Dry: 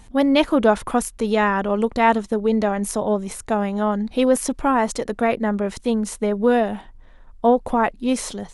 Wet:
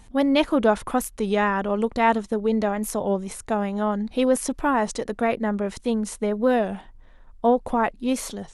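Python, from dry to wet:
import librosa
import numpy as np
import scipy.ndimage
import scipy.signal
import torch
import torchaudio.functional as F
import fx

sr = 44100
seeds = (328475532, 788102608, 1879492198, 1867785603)

y = fx.record_warp(x, sr, rpm=33.33, depth_cents=100.0)
y = y * 10.0 ** (-3.0 / 20.0)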